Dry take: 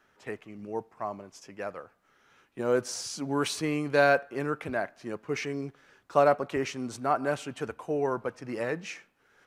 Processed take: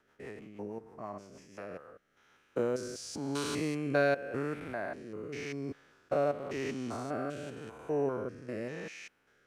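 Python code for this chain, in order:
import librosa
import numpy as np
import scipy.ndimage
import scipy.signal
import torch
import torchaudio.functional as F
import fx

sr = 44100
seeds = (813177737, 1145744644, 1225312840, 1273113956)

y = fx.spec_steps(x, sr, hold_ms=200)
y = fx.rotary_switch(y, sr, hz=6.3, then_hz=0.9, switch_at_s=1.28)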